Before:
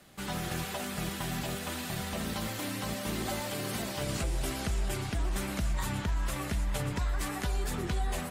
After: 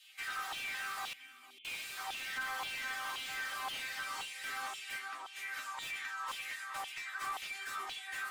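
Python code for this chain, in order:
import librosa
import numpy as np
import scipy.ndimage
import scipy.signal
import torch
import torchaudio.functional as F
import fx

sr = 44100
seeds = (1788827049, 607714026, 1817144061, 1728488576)

p1 = fx.spec_box(x, sr, start_s=1.34, length_s=0.63, low_hz=610.0, high_hz=2100.0, gain_db=-13)
p2 = fx.high_shelf(p1, sr, hz=2100.0, db=-8.0, at=(4.96, 5.52), fade=0.02)
p3 = fx.rider(p2, sr, range_db=10, speed_s=0.5)
p4 = p2 + F.gain(torch.from_numpy(p3), -0.5).numpy()
p5 = fx.resonator_bank(p4, sr, root=60, chord='minor', decay_s=0.23)
p6 = fx.filter_lfo_highpass(p5, sr, shape='saw_down', hz=1.9, low_hz=920.0, high_hz=3200.0, q=3.8)
p7 = 10.0 ** (-38.5 / 20.0) * np.tanh(p6 / 10.0 ** (-38.5 / 20.0))
p8 = fx.formant_cascade(p7, sr, vowel='i', at=(1.13, 1.65))
p9 = p8 + fx.echo_single(p8, sr, ms=453, db=-19.0, dry=0)
p10 = fx.slew_limit(p9, sr, full_power_hz=16.0)
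y = F.gain(torch.from_numpy(p10), 7.0).numpy()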